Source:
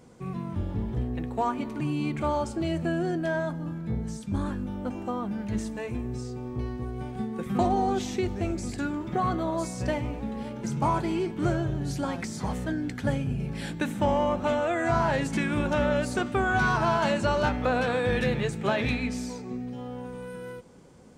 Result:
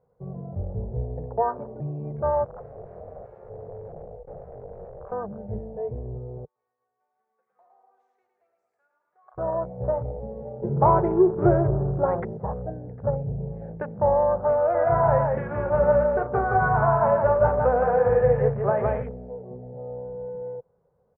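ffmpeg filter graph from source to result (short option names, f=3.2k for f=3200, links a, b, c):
-filter_complex "[0:a]asettb=1/sr,asplit=3[a][b][c];[a]atrim=end=2.454[d];[b]atrim=start=2.45:end=5.12,asetpts=PTS-STARTPTS,afade=t=in:d=0.004:c=qsin,afade=t=out:st=2.666:d=0.004:c=qsin,acompressor=threshold=-33dB:ratio=4:attack=3.2:release=140:knee=1:detection=peak,aeval=exprs='(mod(39.8*val(0)+1,2)-1)/39.8':c=same,aeval=exprs='val(0)*sin(2*PI*270*n/s)':c=same[e];[c]atrim=start=5.116[f];[d][e]acrossfade=d=0.004:c1=hsin:c2=qsin[g];[g][f]acrossfade=d=0.004:c1=qsin:c2=hsin,asettb=1/sr,asplit=3[h][i][j];[h]atrim=end=6.454[k];[i]atrim=start=6.45:end=9.38,asetpts=PTS-STARTPTS,afade=t=in:d=0.004:c=qsin,afade=t=out:st=2.926:d=0.004:c=qsin,highpass=f=680:p=1,aderivative,aecho=1:1:109|218|327|436|545|654|763|872:0.596|0.334|0.187|0.105|0.0586|0.0328|0.0184|0.0103,atrim=end_sample=129213[l];[j]atrim=start=9.376[m];[k][l]acrossfade=d=0.004:c1=hsin:c2=qsin[n];[n][m]acrossfade=d=0.004:c1=qsin:c2=hsin,asettb=1/sr,asplit=3[o][p][q];[o]atrim=end=10.624[r];[p]atrim=start=10.62:end=12.37,asetpts=PTS-STARTPTS,afade=t=in:d=0.004:c=qsin,afade=t=out:st=1.746:d=0.004:c=qsin,equalizer=f=360:w=6.4:g=14.5,acontrast=37[s];[q]atrim=start=12.366[t];[r][s]acrossfade=d=0.004:c1=hsin:c2=qsin[u];[u][t]acrossfade=d=0.004:c1=qsin:c2=hsin,asettb=1/sr,asplit=3[v][w][x];[v]atrim=end=14.584[y];[w]atrim=start=14.58:end=19.03,asetpts=PTS-STARTPTS,afade=t=in:d=0.004:c=qsin,afade=t=out:st=4.446:d=0.004:c=qsin,asplit=2[z][aa];[aa]adelay=44,volume=-12dB[ab];[z][ab]amix=inputs=2:normalize=0,atrim=end_sample=196245,aecho=1:1:166:0.708,atrim=end_sample=196245[ac];[x]atrim=start=19.026[ad];[y][ac]acrossfade=d=0.004:c1=hsin:c2=qsin[ae];[ae][ad]acrossfade=d=0.004:c1=qsin:c2=hsin,aemphasis=mode=reproduction:type=75fm,afwtdn=0.0178,firequalizer=gain_entry='entry(150,0);entry(280,-18);entry(450,7);entry(1800,-7);entry(3100,-28)':delay=0.05:min_phase=1"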